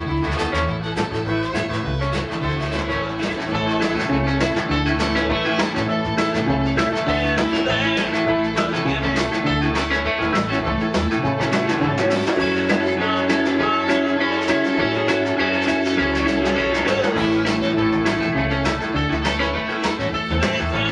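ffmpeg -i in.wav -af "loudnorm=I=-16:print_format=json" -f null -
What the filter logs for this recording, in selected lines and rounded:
"input_i" : "-20.3",
"input_tp" : "-5.7",
"input_lra" : "2.4",
"input_thresh" : "-30.3",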